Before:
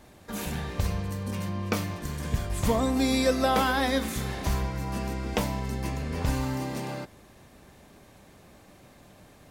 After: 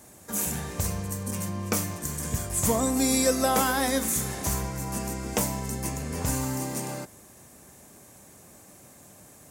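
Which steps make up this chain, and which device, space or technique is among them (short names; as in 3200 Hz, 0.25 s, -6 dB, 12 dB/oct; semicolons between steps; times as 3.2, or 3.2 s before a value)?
budget condenser microphone (HPF 74 Hz; resonant high shelf 5400 Hz +11 dB, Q 1.5)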